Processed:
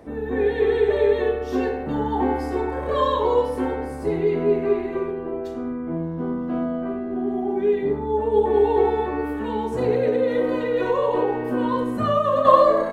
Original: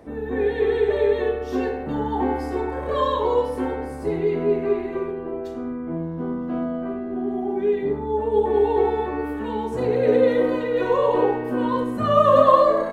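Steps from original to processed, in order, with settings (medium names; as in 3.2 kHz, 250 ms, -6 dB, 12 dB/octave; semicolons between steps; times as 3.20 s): 9.94–12.45 s: compression, threshold -18 dBFS, peak gain reduction 9 dB; trim +1 dB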